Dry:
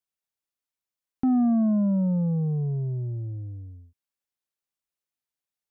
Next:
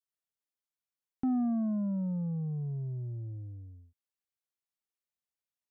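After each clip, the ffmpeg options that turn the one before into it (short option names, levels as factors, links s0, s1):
-af "adynamicequalizer=threshold=0.0158:dfrequency=430:dqfactor=0.7:tfrequency=430:tqfactor=0.7:attack=5:release=100:ratio=0.375:range=3.5:mode=cutabove:tftype=bell,volume=0.447"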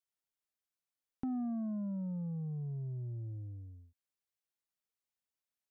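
-af "acompressor=threshold=0.0126:ratio=2,volume=0.841"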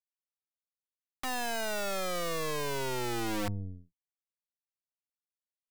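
-af "aemphasis=mode=reproduction:type=bsi,aeval=exprs='(mod(33.5*val(0)+1,2)-1)/33.5':c=same,aeval=exprs='0.0299*(cos(1*acos(clip(val(0)/0.0299,-1,1)))-cos(1*PI/2))+0.0133*(cos(2*acos(clip(val(0)/0.0299,-1,1)))-cos(2*PI/2))+0.00473*(cos(3*acos(clip(val(0)/0.0299,-1,1)))-cos(3*PI/2))+0.00237*(cos(7*acos(clip(val(0)/0.0299,-1,1)))-cos(7*PI/2))':c=same"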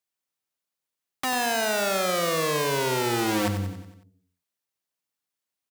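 -filter_complex "[0:a]highpass=89,asplit=2[s0][s1];[s1]aecho=0:1:92|184|276|368|460|552:0.335|0.174|0.0906|0.0471|0.0245|0.0127[s2];[s0][s2]amix=inputs=2:normalize=0,volume=2.66"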